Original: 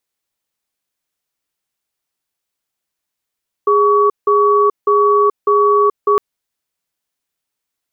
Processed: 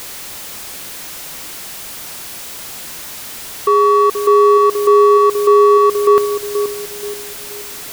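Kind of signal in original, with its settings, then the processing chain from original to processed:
tone pair in a cadence 412 Hz, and 1,130 Hz, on 0.43 s, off 0.17 s, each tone −11.5 dBFS 2.51 s
converter with a step at zero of −23.5 dBFS
on a send: feedback echo with a band-pass in the loop 478 ms, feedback 42%, band-pass 300 Hz, level −5.5 dB

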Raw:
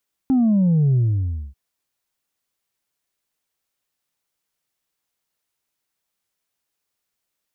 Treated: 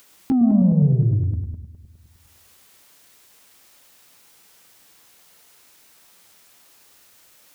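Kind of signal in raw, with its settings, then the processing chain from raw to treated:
bass drop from 270 Hz, over 1.24 s, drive 1.5 dB, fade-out 0.59 s, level −14 dB
feedback delay that plays each chunk backwards 103 ms, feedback 46%, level −3 dB
low-shelf EQ 69 Hz −8.5 dB
upward compression, threshold −33 dBFS

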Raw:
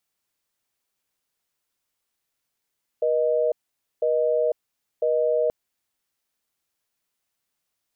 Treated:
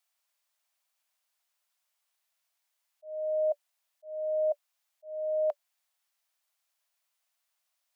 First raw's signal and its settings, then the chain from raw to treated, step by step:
call progress tone busy tone, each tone −21.5 dBFS 2.48 s
Chebyshev high-pass filter 580 Hz, order 8
volume swells 480 ms

